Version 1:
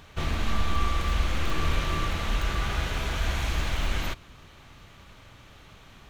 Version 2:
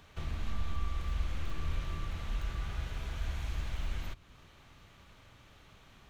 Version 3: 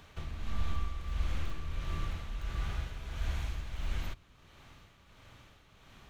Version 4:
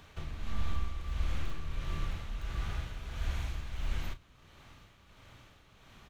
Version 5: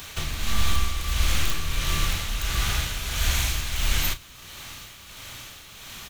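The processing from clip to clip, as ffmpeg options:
ffmpeg -i in.wav -filter_complex "[0:a]acrossover=split=160[link_01][link_02];[link_02]acompressor=threshold=-44dB:ratio=2[link_03];[link_01][link_03]amix=inputs=2:normalize=0,volume=-7.5dB" out.wav
ffmpeg -i in.wav -af "tremolo=f=1.5:d=0.54,volume=2.5dB" out.wav
ffmpeg -i in.wav -filter_complex "[0:a]asplit=2[link_01][link_02];[link_02]adelay=33,volume=-12dB[link_03];[link_01][link_03]amix=inputs=2:normalize=0" out.wav
ffmpeg -i in.wav -af "crystalizer=i=7.5:c=0,volume=9dB" out.wav

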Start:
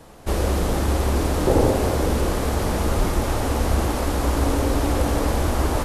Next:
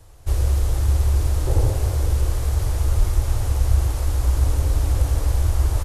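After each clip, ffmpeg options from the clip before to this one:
ffmpeg -i in.wav -af "firequalizer=gain_entry='entry(110,0);entry(190,-30);entry(310,-16);entry(6600,-7)':delay=0.05:min_phase=1,volume=4.5dB" out.wav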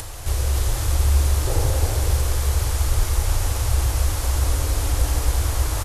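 ffmpeg -i in.wav -af "tiltshelf=frequency=780:gain=-4.5,aecho=1:1:40.82|268.2:0.282|0.631,acompressor=mode=upward:threshold=-22dB:ratio=2.5,volume=1.5dB" out.wav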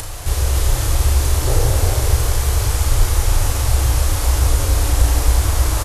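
ffmpeg -i in.wav -filter_complex "[0:a]asplit=2[link_01][link_02];[link_02]adelay=34,volume=-5.5dB[link_03];[link_01][link_03]amix=inputs=2:normalize=0,volume=4dB" out.wav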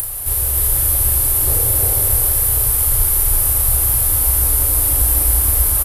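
ffmpeg -i in.wav -af "aecho=1:1:320:0.562,aexciter=amount=12.2:drive=6.4:freq=9300,volume=-6.5dB" out.wav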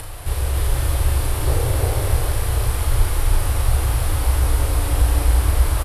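ffmpeg -i in.wav -af "lowpass=4000,volume=3dB" out.wav

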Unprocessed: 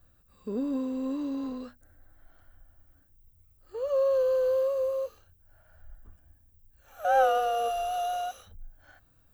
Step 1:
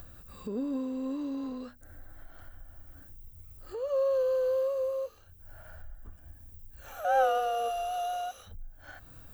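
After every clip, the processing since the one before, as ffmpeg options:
ffmpeg -i in.wav -af "acompressor=mode=upward:threshold=-32dB:ratio=2.5,volume=-2.5dB" out.wav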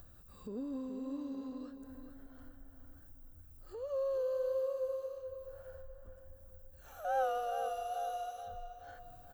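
ffmpeg -i in.wav -filter_complex "[0:a]equalizer=frequency=2300:width_type=o:width=1:gain=-5,asplit=2[link_01][link_02];[link_02]adelay=426,lowpass=frequency=3600:poles=1,volume=-8.5dB,asplit=2[link_03][link_04];[link_04]adelay=426,lowpass=frequency=3600:poles=1,volume=0.46,asplit=2[link_05][link_06];[link_06]adelay=426,lowpass=frequency=3600:poles=1,volume=0.46,asplit=2[link_07][link_08];[link_08]adelay=426,lowpass=frequency=3600:poles=1,volume=0.46,asplit=2[link_09][link_10];[link_10]adelay=426,lowpass=frequency=3600:poles=1,volume=0.46[link_11];[link_01][link_03][link_05][link_07][link_09][link_11]amix=inputs=6:normalize=0,volume=-7.5dB" out.wav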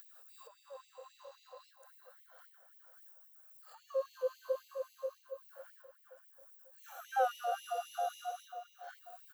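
ffmpeg -i in.wav -af "afftfilt=real='re*gte(b*sr/1024,460*pow(2000/460,0.5+0.5*sin(2*PI*3.7*pts/sr)))':imag='im*gte(b*sr/1024,460*pow(2000/460,0.5+0.5*sin(2*PI*3.7*pts/sr)))':win_size=1024:overlap=0.75,volume=4dB" out.wav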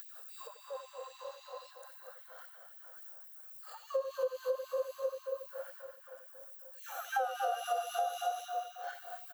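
ffmpeg -i in.wav -filter_complex "[0:a]asplit=2[link_01][link_02];[link_02]aecho=0:1:89|234:0.266|0.316[link_03];[link_01][link_03]amix=inputs=2:normalize=0,acompressor=threshold=-37dB:ratio=12,volume=7.5dB" out.wav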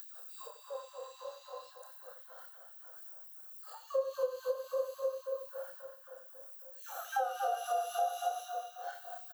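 ffmpeg -i in.wav -filter_complex "[0:a]equalizer=frequency=2200:width_type=o:width=0.79:gain=-8.5,asplit=2[link_01][link_02];[link_02]adelay=30,volume=-7.5dB[link_03];[link_01][link_03]amix=inputs=2:normalize=0" out.wav

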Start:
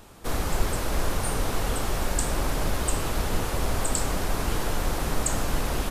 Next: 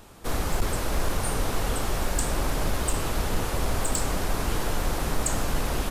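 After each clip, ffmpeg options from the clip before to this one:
ffmpeg -i in.wav -af "asoftclip=type=hard:threshold=-16.5dB" out.wav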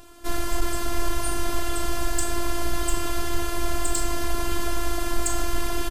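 ffmpeg -i in.wav -filter_complex "[0:a]afftfilt=real='hypot(re,im)*cos(PI*b)':imag='0':win_size=512:overlap=0.75,asplit=2[link_01][link_02];[link_02]adelay=40,volume=-12.5dB[link_03];[link_01][link_03]amix=inputs=2:normalize=0,volume=4.5dB" out.wav

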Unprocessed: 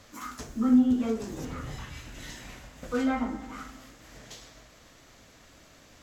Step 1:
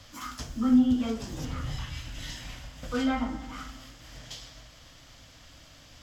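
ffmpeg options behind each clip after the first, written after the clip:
ffmpeg -i in.wav -filter_complex "[0:a]equalizer=frequency=200:width_type=o:width=0.33:gain=-8,equalizer=frequency=400:width_type=o:width=0.33:gain=-11,equalizer=frequency=3150:width_type=o:width=0.33:gain=8,equalizer=frequency=5000:width_type=o:width=0.33:gain=7,acrossover=split=200|2800[link_01][link_02][link_03];[link_01]acontrast=53[link_04];[link_04][link_02][link_03]amix=inputs=3:normalize=0" out.wav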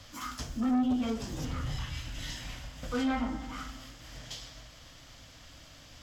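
ffmpeg -i in.wav -af "asoftclip=type=tanh:threshold=-24dB" out.wav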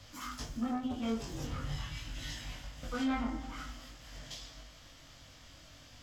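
ffmpeg -i in.wav -af "flanger=delay=20:depth=2:speed=0.47" out.wav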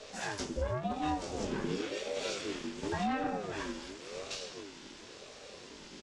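ffmpeg -i in.wav -af "alimiter=level_in=7dB:limit=-24dB:level=0:latency=1:release=476,volume=-7dB,aresample=22050,aresample=44100,aeval=exprs='val(0)*sin(2*PI*410*n/s+410*0.3/0.93*sin(2*PI*0.93*n/s))':channel_layout=same,volume=8dB" out.wav

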